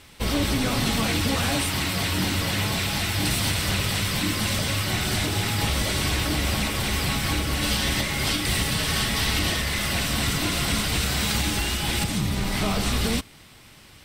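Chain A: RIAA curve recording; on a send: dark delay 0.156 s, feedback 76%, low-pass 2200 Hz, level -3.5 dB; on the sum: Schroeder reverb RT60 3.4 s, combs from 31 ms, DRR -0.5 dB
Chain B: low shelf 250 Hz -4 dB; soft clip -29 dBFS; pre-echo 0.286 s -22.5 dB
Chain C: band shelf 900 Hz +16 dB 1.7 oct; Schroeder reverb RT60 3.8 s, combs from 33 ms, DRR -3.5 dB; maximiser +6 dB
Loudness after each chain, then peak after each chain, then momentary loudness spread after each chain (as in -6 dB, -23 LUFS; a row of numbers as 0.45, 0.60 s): -13.5, -30.5, -10.0 LUFS; -2.0, -28.5, -1.0 dBFS; 4, 2, 1 LU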